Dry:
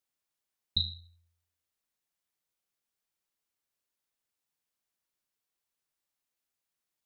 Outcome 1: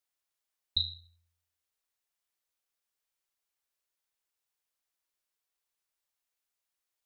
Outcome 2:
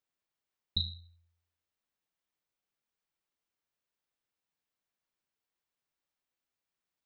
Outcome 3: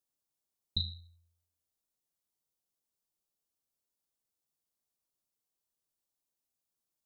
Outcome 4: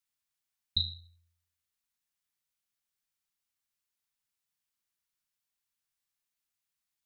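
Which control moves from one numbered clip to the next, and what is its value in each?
peaking EQ, frequency: 170 Hz, 12 kHz, 2 kHz, 460 Hz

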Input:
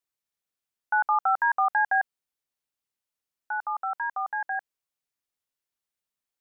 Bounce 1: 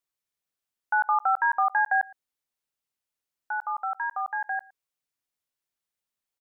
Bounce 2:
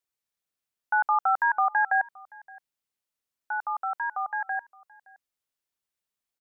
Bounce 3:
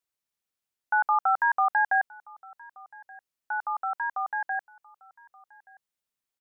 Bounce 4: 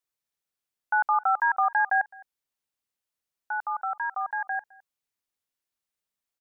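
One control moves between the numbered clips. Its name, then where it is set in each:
delay, time: 113 ms, 569 ms, 1177 ms, 211 ms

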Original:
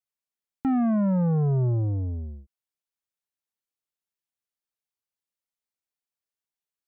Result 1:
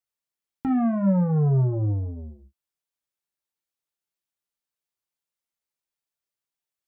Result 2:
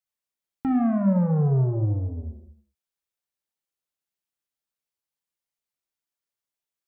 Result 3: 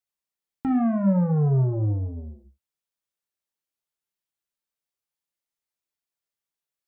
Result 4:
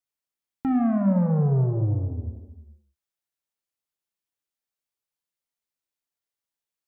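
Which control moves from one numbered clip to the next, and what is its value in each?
gated-style reverb, gate: 80 ms, 300 ms, 140 ms, 510 ms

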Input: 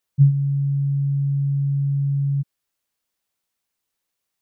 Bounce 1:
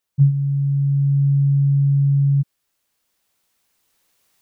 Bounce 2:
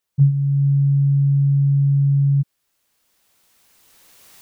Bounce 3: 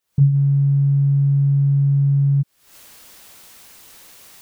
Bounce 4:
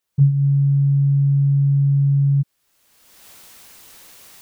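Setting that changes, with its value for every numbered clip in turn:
recorder AGC, rising by: 5.4 dB/s, 14 dB/s, 85 dB/s, 34 dB/s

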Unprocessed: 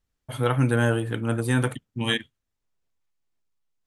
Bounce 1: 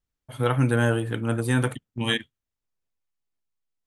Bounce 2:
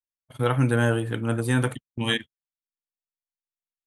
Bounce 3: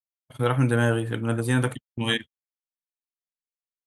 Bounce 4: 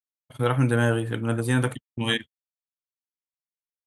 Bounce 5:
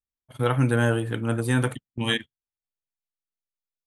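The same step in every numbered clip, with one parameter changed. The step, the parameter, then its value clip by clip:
gate, range: -6 dB, -33 dB, -46 dB, -59 dB, -20 dB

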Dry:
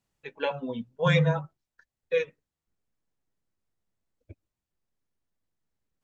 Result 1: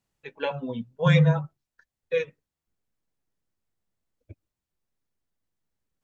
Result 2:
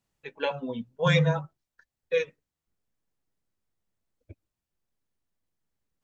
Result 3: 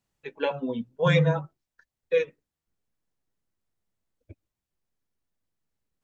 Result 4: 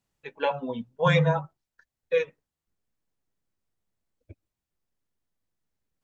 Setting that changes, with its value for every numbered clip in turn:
dynamic bell, frequency: 130 Hz, 5.5 kHz, 330 Hz, 860 Hz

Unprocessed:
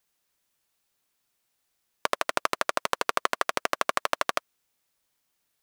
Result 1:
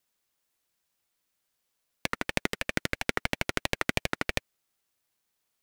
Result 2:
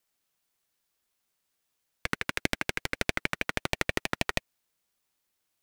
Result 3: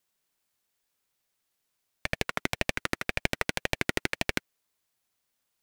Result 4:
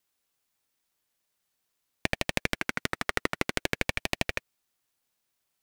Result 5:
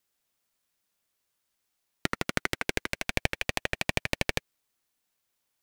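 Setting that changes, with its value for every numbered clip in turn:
ring modulator with a swept carrier, at: 3 Hz, 6.4 Hz, 1.9 Hz, 0.48 Hz, 0.27 Hz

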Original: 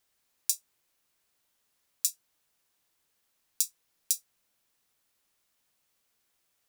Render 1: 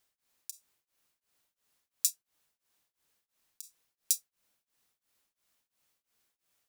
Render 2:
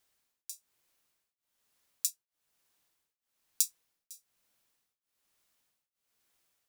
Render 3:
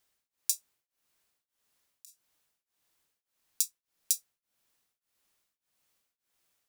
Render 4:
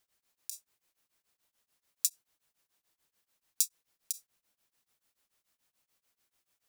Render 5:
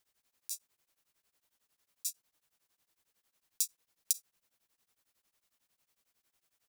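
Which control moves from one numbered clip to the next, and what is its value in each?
tremolo of two beating tones, nulls at: 2.9 Hz, 1.1 Hz, 1.7 Hz, 6.9 Hz, 11 Hz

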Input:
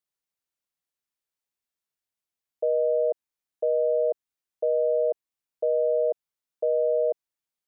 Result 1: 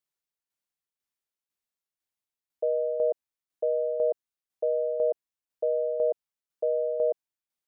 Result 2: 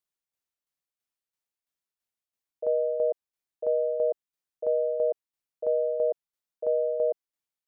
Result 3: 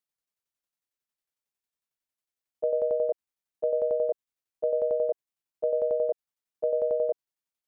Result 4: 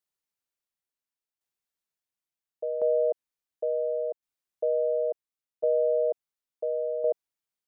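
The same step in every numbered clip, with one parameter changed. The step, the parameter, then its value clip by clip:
tremolo, rate: 2 Hz, 3 Hz, 11 Hz, 0.71 Hz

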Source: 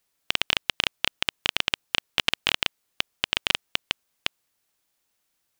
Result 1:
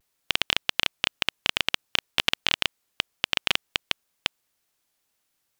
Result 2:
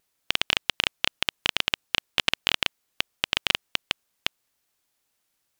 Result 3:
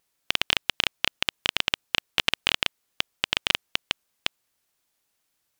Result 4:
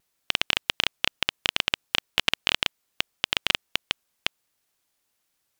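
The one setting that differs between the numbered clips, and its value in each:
vibrato, rate: 0.55 Hz, 3.3 Hz, 6.4 Hz, 1.6 Hz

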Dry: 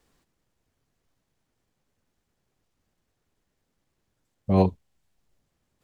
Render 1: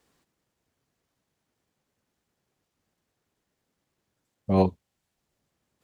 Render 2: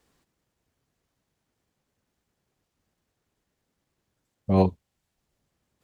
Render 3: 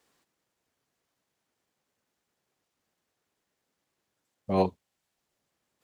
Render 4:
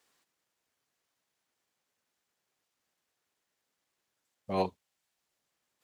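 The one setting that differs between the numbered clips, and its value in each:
high-pass, cutoff frequency: 120 Hz, 45 Hz, 420 Hz, 1.1 kHz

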